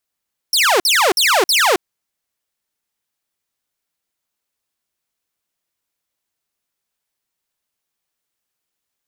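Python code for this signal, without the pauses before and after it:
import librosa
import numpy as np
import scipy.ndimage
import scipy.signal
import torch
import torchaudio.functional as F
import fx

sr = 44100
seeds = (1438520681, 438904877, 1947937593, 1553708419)

y = fx.laser_zaps(sr, level_db=-8.5, start_hz=5800.0, end_hz=330.0, length_s=0.27, wave='saw', shots=4, gap_s=0.05)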